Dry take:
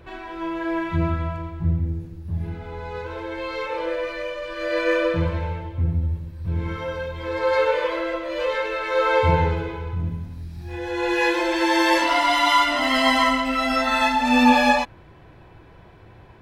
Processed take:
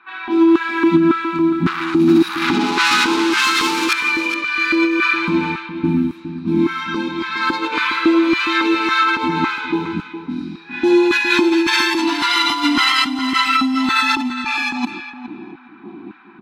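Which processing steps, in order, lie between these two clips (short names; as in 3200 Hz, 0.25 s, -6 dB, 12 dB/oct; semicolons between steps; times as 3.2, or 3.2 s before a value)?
low shelf 160 Hz -8.5 dB; small resonant body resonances 210/750/2400/3800 Hz, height 15 dB, ringing for 30 ms; 1.66–3.93 overdrive pedal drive 33 dB, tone 5100 Hz, clips at -10 dBFS; LFO high-pass square 1.8 Hz 270–1500 Hz; negative-ratio compressor -19 dBFS, ratio -1; EQ curve 130 Hz 0 dB, 350 Hz +6 dB, 560 Hz -26 dB, 840 Hz -5 dB, 1200 Hz +4 dB, 1800 Hz -4 dB, 2800 Hz +2 dB, 4100 Hz +6 dB, 9300 Hz +4 dB; feedback echo 0.412 s, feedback 20%, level -11 dB; low-pass opened by the level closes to 1300 Hz, open at -17 dBFS; gain +1 dB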